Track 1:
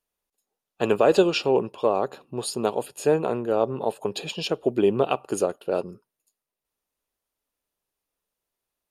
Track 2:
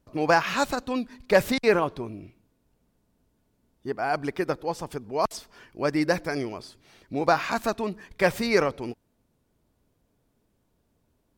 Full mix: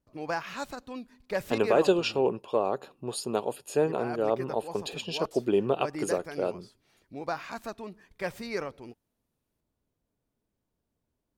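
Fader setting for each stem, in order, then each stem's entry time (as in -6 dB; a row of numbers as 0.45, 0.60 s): -4.5, -11.5 dB; 0.70, 0.00 s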